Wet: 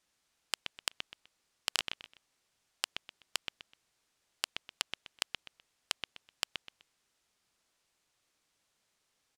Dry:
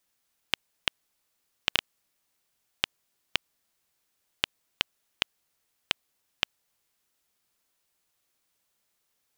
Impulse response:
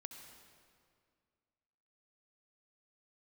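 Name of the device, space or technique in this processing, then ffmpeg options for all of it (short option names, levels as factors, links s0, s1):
overflowing digital effects unit: -af "aecho=1:1:126|252|378:0.178|0.0462|0.012,aeval=exprs='(mod(3.98*val(0)+1,2)-1)/3.98':c=same,lowpass=8200,volume=1.19"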